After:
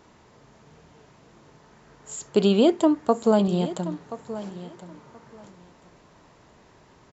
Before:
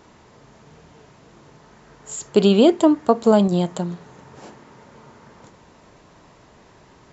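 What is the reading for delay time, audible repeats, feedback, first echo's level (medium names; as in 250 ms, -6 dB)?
1028 ms, 2, 18%, -14.5 dB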